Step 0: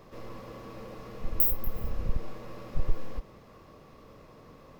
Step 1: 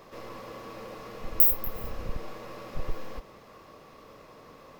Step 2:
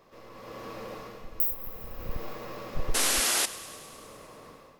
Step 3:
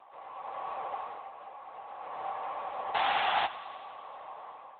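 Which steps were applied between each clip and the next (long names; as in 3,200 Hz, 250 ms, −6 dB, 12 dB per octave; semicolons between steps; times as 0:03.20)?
low-shelf EQ 270 Hz −11 dB; level +5 dB
sound drawn into the spectrogram noise, 0:02.94–0:03.46, 210–12,000 Hz −28 dBFS; feedback echo with a high-pass in the loop 102 ms, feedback 74%, level −17.5 dB; automatic gain control gain up to 11 dB; level −8.5 dB
high-pass with resonance 800 Hz, resonance Q 6.7; AMR narrowband 10.2 kbit/s 8,000 Hz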